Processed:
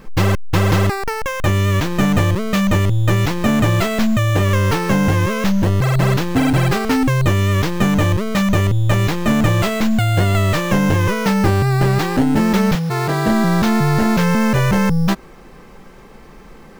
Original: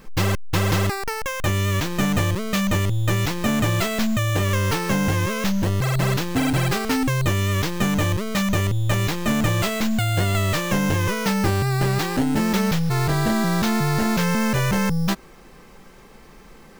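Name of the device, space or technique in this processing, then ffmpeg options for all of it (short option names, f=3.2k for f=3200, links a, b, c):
behind a face mask: -filter_complex "[0:a]asettb=1/sr,asplit=3[a][b][c];[a]atrim=end=12.754[d];[b]atrim=start=12.75:end=13.27,asetpts=PTS-STARTPTS,afade=t=in:d=0.004:c=qsin,afade=t=out:st=0.516:d=0.004:c=qsin,highpass=180[e];[c]atrim=start=13.266[f];[d][e]acrossfade=d=0.004:c1=hsin:c2=qsin[g];[g][f]acrossfade=d=0.004:c1=qsin:c2=hsin,highshelf=f=2.7k:g=-7,volume=6dB"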